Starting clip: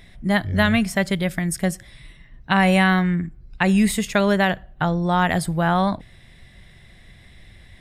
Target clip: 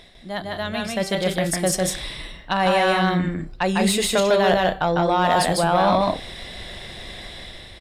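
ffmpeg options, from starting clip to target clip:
-filter_complex "[0:a]areverse,acompressor=threshold=-30dB:ratio=6,areverse,bandreject=f=390.2:t=h:w=4,bandreject=f=780.4:t=h:w=4,bandreject=f=1.1706k:t=h:w=4,bandreject=f=1.5608k:t=h:w=4,bandreject=f=1.951k:t=h:w=4,bandreject=f=2.3412k:t=h:w=4,bandreject=f=2.7314k:t=h:w=4,bandreject=f=3.1216k:t=h:w=4,bandreject=f=3.5118k:t=h:w=4,bandreject=f=3.902k:t=h:w=4,bandreject=f=4.2922k:t=h:w=4,bandreject=f=4.6824k:t=h:w=4,bandreject=f=5.0726k:t=h:w=4,bandreject=f=5.4628k:t=h:w=4,bandreject=f=5.853k:t=h:w=4,bandreject=f=6.2432k:t=h:w=4,bandreject=f=6.6334k:t=h:w=4,bandreject=f=7.0236k:t=h:w=4,bandreject=f=7.4138k:t=h:w=4,bandreject=f=7.804k:t=h:w=4,bandreject=f=8.1942k:t=h:w=4,bandreject=f=8.5844k:t=h:w=4,bandreject=f=8.9746k:t=h:w=4,bandreject=f=9.3648k:t=h:w=4,bandreject=f=9.755k:t=h:w=4,bandreject=f=10.1452k:t=h:w=4,bandreject=f=10.5354k:t=h:w=4,bandreject=f=10.9256k:t=h:w=4,bandreject=f=11.3158k:t=h:w=4,bandreject=f=11.706k:t=h:w=4,bandreject=f=12.0962k:t=h:w=4,bandreject=f=12.4864k:t=h:w=4,bandreject=f=12.8766k:t=h:w=4,bandreject=f=13.2668k:t=h:w=4,bandreject=f=13.657k:t=h:w=4,dynaudnorm=f=720:g=3:m=10dB,equalizer=f=125:t=o:w=1:g=-5,equalizer=f=500:t=o:w=1:g=5,equalizer=f=2k:t=o:w=1:g=-8,equalizer=f=4k:t=o:w=1:g=4,asplit=2[a][b];[b]aecho=0:1:151.6|183.7:0.794|0.316[c];[a][c]amix=inputs=2:normalize=0,asplit=2[d][e];[e]highpass=f=720:p=1,volume=10dB,asoftclip=type=tanh:threshold=-9dB[f];[d][f]amix=inputs=2:normalize=0,lowpass=f=4.7k:p=1,volume=-6dB,volume=1.5dB"

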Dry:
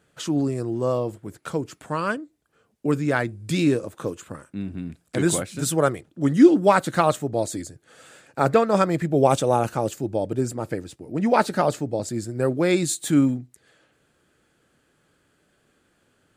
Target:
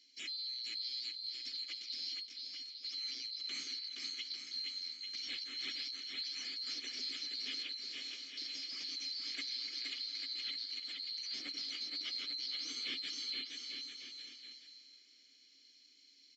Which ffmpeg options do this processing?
-filter_complex "[0:a]afftfilt=real='real(if(lt(b,736),b+184*(1-2*mod(floor(b/184),2)),b),0)':imag='imag(if(lt(b,736),b+184*(1-2*mod(floor(b/184),2)),b),0)':win_size=2048:overlap=0.75,aemphasis=mode=production:type=50kf,afftfilt=real='re*lt(hypot(re,im),0.794)':imag='im*lt(hypot(re,im),0.794)':win_size=1024:overlap=0.75,equalizer=f=120:t=o:w=1.6:g=-13,aecho=1:1:2.4:0.35,acrossover=split=700|1500[a][b][c];[b]dynaudnorm=f=180:g=21:m=14dB[d];[c]alimiter=limit=-9dB:level=0:latency=1:release=189[e];[a][d][e]amix=inputs=3:normalize=0,acompressor=threshold=-38dB:ratio=2,asoftclip=type=tanh:threshold=-32.5dB,aresample=16000,aresample=44100,asplit=3[f][g][h];[f]bandpass=f=270:t=q:w=8,volume=0dB[i];[g]bandpass=f=2.29k:t=q:w=8,volume=-6dB[j];[h]bandpass=f=3.01k:t=q:w=8,volume=-9dB[k];[i][j][k]amix=inputs=3:normalize=0,asplit=2[l][m];[m]aecho=0:1:470|846|1147|1387|1580:0.631|0.398|0.251|0.158|0.1[n];[l][n]amix=inputs=2:normalize=0,volume=13dB"

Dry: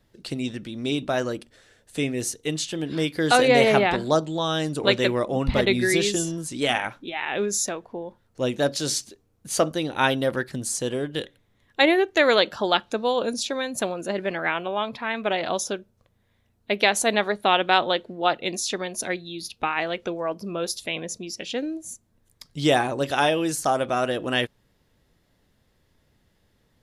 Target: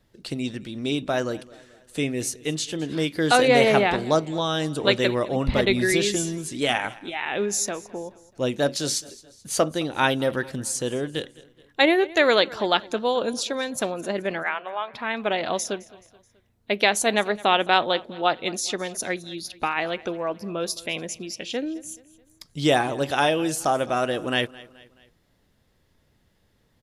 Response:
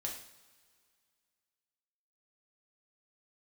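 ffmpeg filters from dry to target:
-filter_complex "[0:a]asplit=3[a][b][c];[a]afade=t=out:st=14.42:d=0.02[d];[b]highpass=740,lowpass=2.3k,afade=t=in:st=14.42:d=0.02,afade=t=out:st=14.93:d=0.02[e];[c]afade=t=in:st=14.93:d=0.02[f];[d][e][f]amix=inputs=3:normalize=0,aecho=1:1:214|428|642:0.0891|0.0428|0.0205"

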